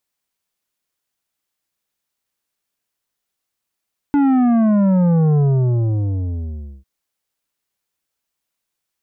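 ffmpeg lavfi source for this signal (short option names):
-f lavfi -i "aevalsrc='0.237*clip((2.7-t)/1.47,0,1)*tanh(2.99*sin(2*PI*290*2.7/log(65/290)*(exp(log(65/290)*t/2.7)-1)))/tanh(2.99)':d=2.7:s=44100"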